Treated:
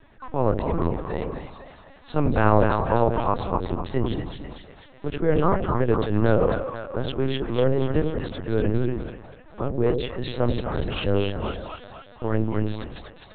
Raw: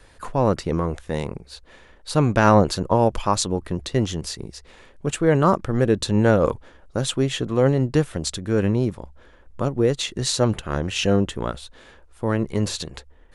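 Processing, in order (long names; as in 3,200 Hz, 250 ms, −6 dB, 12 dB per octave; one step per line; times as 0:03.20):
low-pass filter 2,800 Hz 6 dB per octave
echo with a time of its own for lows and highs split 570 Hz, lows 82 ms, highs 247 ms, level −4 dB
linear-prediction vocoder at 8 kHz pitch kept
level −3 dB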